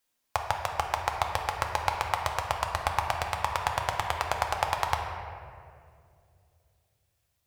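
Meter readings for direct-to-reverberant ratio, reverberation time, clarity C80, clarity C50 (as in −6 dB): 1.5 dB, 2.4 s, 5.0 dB, 4.0 dB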